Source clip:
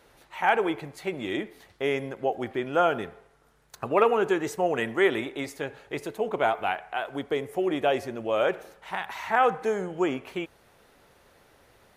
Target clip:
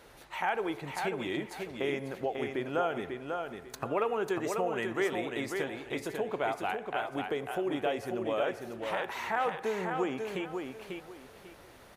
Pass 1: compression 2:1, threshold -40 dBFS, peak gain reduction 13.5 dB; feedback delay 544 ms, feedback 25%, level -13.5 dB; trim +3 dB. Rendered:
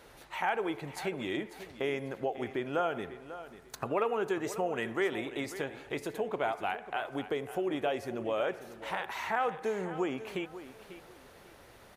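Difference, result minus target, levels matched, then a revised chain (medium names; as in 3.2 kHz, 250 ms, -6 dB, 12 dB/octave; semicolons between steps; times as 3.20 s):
echo-to-direct -8.5 dB
compression 2:1, threshold -40 dBFS, peak gain reduction 13.5 dB; feedback delay 544 ms, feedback 25%, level -5 dB; trim +3 dB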